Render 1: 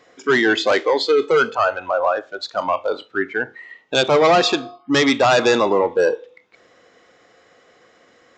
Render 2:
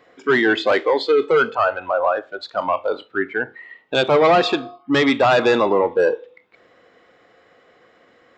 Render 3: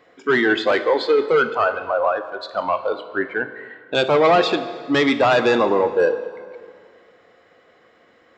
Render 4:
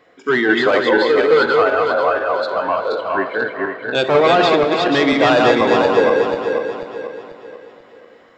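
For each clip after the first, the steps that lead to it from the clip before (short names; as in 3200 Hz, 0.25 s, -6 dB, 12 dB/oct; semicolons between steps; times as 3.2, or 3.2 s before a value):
bell 6300 Hz -12.5 dB 0.89 oct
plate-style reverb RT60 2.2 s, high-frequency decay 0.8×, DRR 11.5 dB; gain -1 dB
regenerating reverse delay 0.244 s, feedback 62%, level -2 dB; gain +1 dB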